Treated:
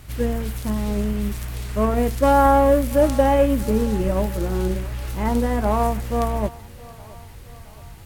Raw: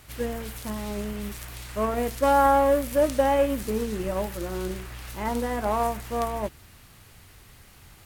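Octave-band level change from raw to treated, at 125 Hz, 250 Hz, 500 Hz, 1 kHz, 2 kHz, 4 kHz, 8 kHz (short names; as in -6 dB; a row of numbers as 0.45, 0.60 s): +11.5, +8.0, +4.5, +3.0, +2.5, +2.0, +2.0 dB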